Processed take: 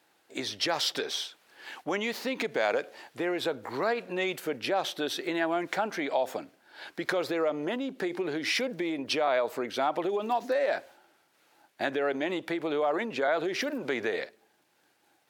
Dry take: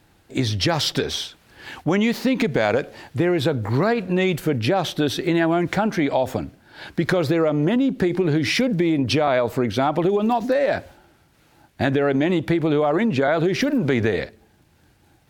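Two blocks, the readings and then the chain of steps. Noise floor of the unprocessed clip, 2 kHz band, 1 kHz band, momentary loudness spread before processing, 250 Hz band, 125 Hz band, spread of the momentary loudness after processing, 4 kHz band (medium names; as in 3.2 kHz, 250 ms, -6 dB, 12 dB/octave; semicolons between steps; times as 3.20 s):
-58 dBFS, -6.0 dB, -6.5 dB, 7 LU, -14.0 dB, -24.5 dB, 8 LU, -6.0 dB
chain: high-pass 430 Hz 12 dB/octave; trim -6 dB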